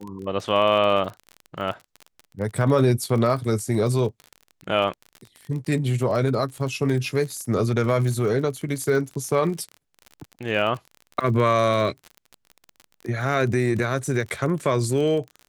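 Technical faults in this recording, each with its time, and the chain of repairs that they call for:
crackle 38 per s -30 dBFS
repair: de-click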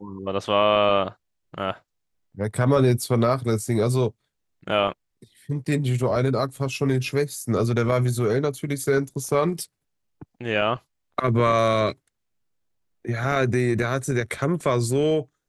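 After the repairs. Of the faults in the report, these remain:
nothing left

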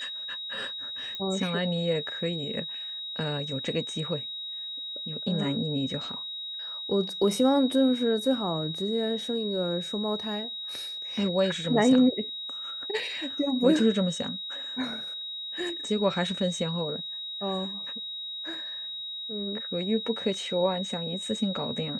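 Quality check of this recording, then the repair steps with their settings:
whine 3.8 kHz -34 dBFS
1.15 s: pop -22 dBFS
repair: de-click; band-stop 3.8 kHz, Q 30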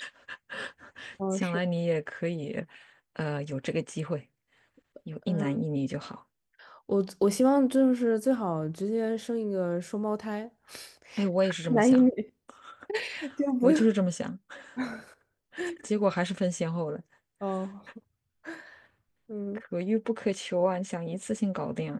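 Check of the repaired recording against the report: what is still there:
1.15 s: pop

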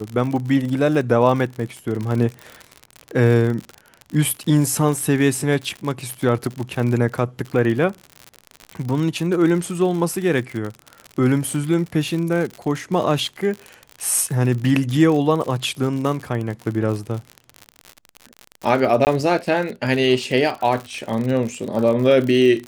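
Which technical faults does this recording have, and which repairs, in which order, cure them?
crackle 58 per s -25 dBFS
19.05–19.07 s: dropout 19 ms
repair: de-click; interpolate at 19.05 s, 19 ms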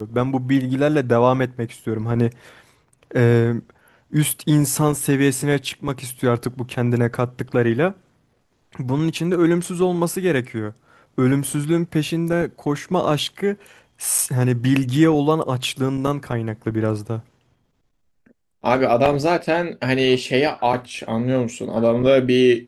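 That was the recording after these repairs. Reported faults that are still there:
nothing left

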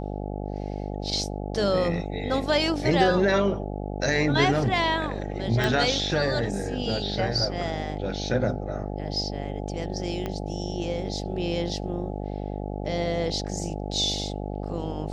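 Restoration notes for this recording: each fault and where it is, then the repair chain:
buzz 50 Hz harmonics 17 -32 dBFS
5.64 s: pop
10.26 s: pop -17 dBFS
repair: de-click; de-hum 50 Hz, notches 17

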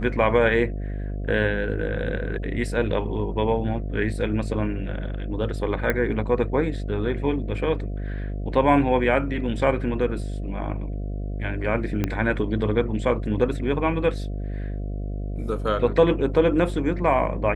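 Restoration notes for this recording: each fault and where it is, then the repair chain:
buzz 50 Hz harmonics 14 -29 dBFS
5.90 s: pop -10 dBFS
12.04 s: pop -11 dBFS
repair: de-click; de-hum 50 Hz, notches 14

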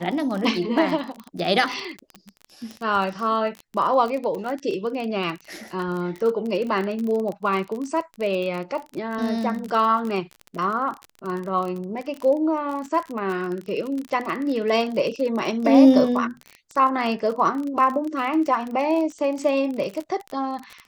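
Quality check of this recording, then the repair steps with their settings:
crackle 32 per s -27 dBFS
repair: de-click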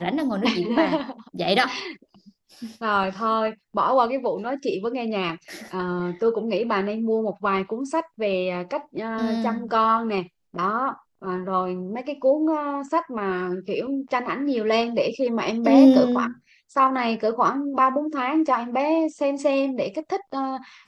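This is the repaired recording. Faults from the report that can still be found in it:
nothing left

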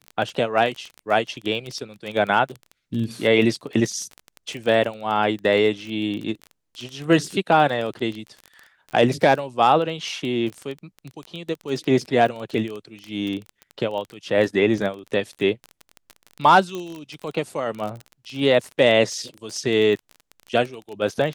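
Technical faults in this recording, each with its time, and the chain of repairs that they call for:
crackle 20 per s -27 dBFS
16.75 s: pop -18 dBFS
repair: de-click

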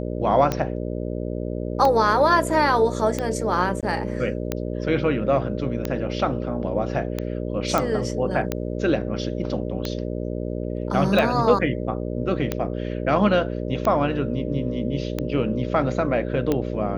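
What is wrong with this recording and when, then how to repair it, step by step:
buzz 60 Hz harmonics 10 -28 dBFS
tick 45 rpm -10 dBFS
3.81–3.83 s: dropout 17 ms
7.78 s: pop -7 dBFS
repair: de-click; de-hum 60 Hz, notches 10; interpolate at 3.81 s, 17 ms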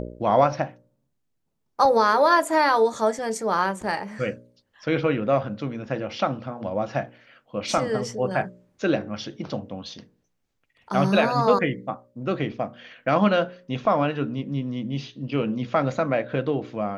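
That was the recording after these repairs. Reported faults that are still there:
nothing left

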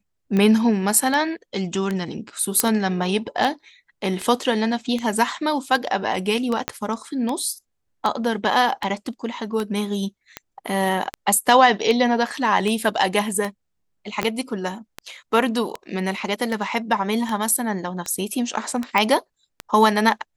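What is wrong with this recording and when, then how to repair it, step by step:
tick 78 rpm -12 dBFS
2.60 s: pop -1 dBFS
6.68 s: pop -7 dBFS
14.23 s: pop -7 dBFS
18.98 s: pop -7 dBFS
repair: de-click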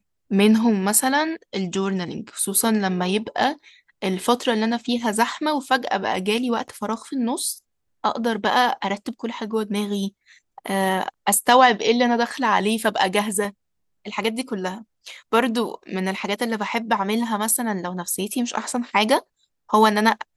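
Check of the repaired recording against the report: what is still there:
6.68 s: pop
14.23 s: pop

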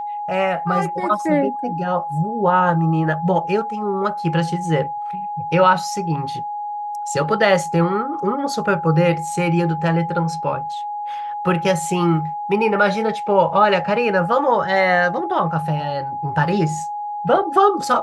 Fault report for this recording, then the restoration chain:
whine 830 Hz -24 dBFS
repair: band-stop 830 Hz, Q 30

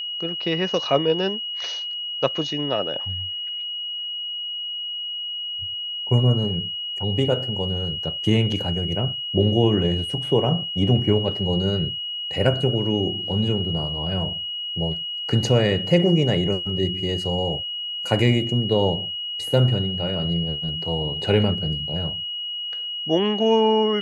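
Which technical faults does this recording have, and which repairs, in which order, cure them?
whine 2.9 kHz -27 dBFS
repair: band-stop 2.9 kHz, Q 30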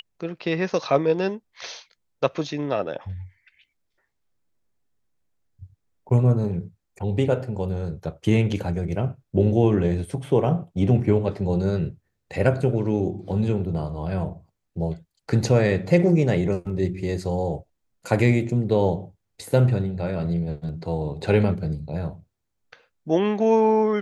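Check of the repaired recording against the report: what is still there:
nothing left

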